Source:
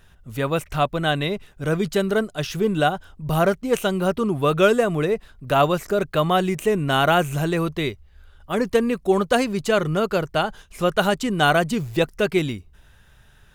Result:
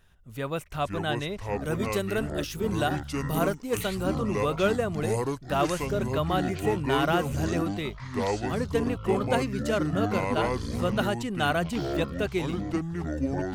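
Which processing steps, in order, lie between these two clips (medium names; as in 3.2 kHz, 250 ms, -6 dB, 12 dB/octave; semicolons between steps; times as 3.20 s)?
1.64–4.03 s: treble shelf 6.1 kHz +9 dB; ever faster or slower copies 366 ms, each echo -6 st, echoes 3; trim -8.5 dB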